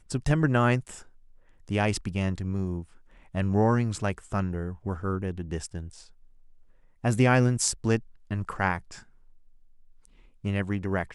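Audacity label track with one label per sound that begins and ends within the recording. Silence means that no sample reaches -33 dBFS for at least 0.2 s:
1.700000	2.820000	sound
3.350000	5.870000	sound
7.040000	7.990000	sound
8.310000	8.940000	sound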